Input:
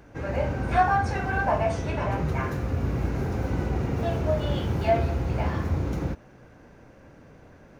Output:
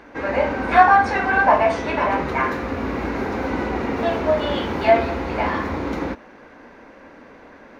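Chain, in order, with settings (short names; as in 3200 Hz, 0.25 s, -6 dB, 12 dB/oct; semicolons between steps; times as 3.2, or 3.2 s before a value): graphic EQ 125/250/500/1000/2000/4000 Hz -11/+11/+6/+11/+11/+9 dB; gain -2.5 dB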